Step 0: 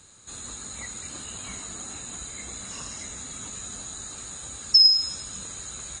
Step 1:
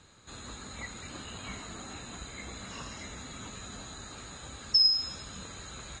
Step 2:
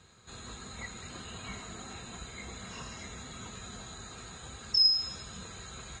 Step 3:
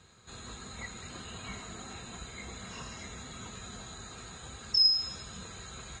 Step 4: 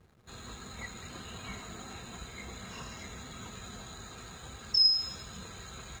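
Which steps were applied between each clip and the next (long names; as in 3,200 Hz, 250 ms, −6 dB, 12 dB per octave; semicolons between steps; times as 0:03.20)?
low-pass filter 3,700 Hz 12 dB per octave
notch comb filter 290 Hz
no processing that can be heard
slack as between gear wheels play −51.5 dBFS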